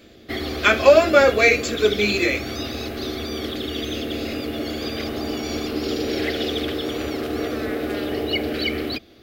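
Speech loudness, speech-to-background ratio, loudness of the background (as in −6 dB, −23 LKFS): −17.0 LKFS, 9.5 dB, −26.5 LKFS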